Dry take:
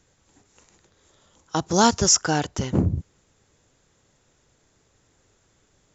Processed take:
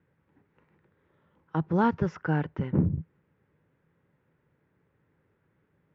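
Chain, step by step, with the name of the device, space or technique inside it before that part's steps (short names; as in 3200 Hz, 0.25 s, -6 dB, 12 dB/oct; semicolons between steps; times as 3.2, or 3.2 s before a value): bass cabinet (speaker cabinet 83–2100 Hz, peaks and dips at 160 Hz +8 dB, 700 Hz -8 dB, 1200 Hz -3 dB); gain -5 dB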